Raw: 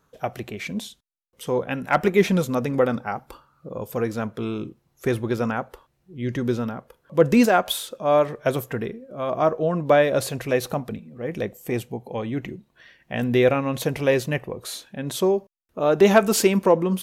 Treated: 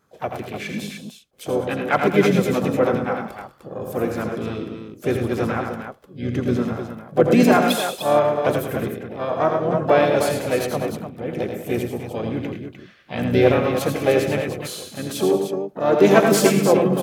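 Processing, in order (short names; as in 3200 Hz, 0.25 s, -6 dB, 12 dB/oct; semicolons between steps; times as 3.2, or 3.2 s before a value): notch comb 930 Hz; tapped delay 82/107/131/185/205/302 ms -7/-8.5/-20/-16.5/-15/-8 dB; harmoniser -5 st -8 dB, +3 st -11 dB, +7 st -13 dB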